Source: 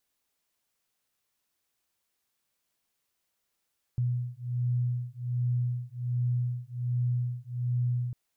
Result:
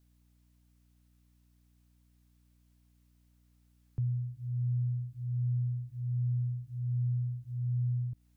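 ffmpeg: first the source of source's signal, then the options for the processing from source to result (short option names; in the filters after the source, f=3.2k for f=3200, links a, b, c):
-f lavfi -i "aevalsrc='0.0316*(sin(2*PI*122*t)+sin(2*PI*123.3*t))':d=4.15:s=44100"
-filter_complex "[0:a]acrossover=split=140[a][b];[b]acompressor=threshold=-47dB:ratio=6[c];[a][c]amix=inputs=2:normalize=0,aeval=exprs='val(0)+0.000562*(sin(2*PI*60*n/s)+sin(2*PI*2*60*n/s)/2+sin(2*PI*3*60*n/s)/3+sin(2*PI*4*60*n/s)/4+sin(2*PI*5*60*n/s)/5)':c=same"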